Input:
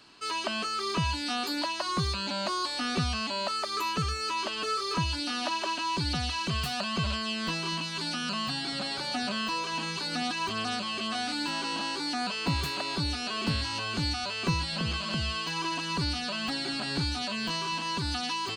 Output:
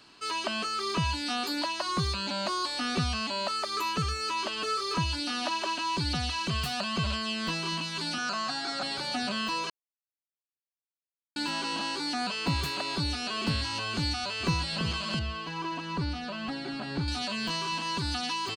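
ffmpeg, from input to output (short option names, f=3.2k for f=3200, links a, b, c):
-filter_complex "[0:a]asettb=1/sr,asplit=3[a][b][c];[a]atrim=end=8.184[d];[b]atrim=start=8.18:end=8.83,asetpts=PTS-STARTPTS,afade=t=in:d=0.004:c=qsin,afade=t=out:st=0.646:d=0.004:c=qsin,highpass=300,equalizer=f=730:t=q:w=4:g=7,equalizer=f=1.4k:t=q:w=4:g=8,equalizer=f=3k:t=q:w=4:g=-8,equalizer=f=6.4k:t=q:w=4:g=5,lowpass=f=8.4k:w=0.5412,lowpass=f=8.4k:w=1.3066[e];[c]atrim=start=8.826[f];[d][e]acrossfade=d=0.004:c1=hsin:c2=qsin[g];[g][f]acrossfade=d=0.004:c1=qsin:c2=hsin,asplit=2[h][i];[i]afade=t=in:st=14.03:d=0.01,afade=t=out:st=14.61:d=0.01,aecho=0:1:370|740|1110:0.211349|0.0528372|0.0132093[j];[h][j]amix=inputs=2:normalize=0,asettb=1/sr,asplit=3[k][l][m];[k]atrim=end=15.194[n];[l]atrim=start=15.19:end=17.08,asetpts=PTS-STARTPTS,afade=t=in:d=0.004:c=qsin,afade=t=out:st=1.886:d=0.004:c=qsin,lowpass=f=1.5k:p=1[o];[m]atrim=start=17.076[p];[n][o]acrossfade=d=0.004:c1=hsin:c2=qsin[q];[q][p]acrossfade=d=0.004:c1=qsin:c2=hsin,asplit=3[r][s][t];[r]atrim=end=9.7,asetpts=PTS-STARTPTS,afade=t=out:st=9.696:d=0.004:c=hsin[u];[s]atrim=start=9.7:end=11.36,asetpts=PTS-STARTPTS,volume=0[v];[t]atrim=start=11.36,asetpts=PTS-STARTPTS,afade=t=in:d=0.004:c=hsin[w];[u][v][w]concat=n=3:v=0:a=1"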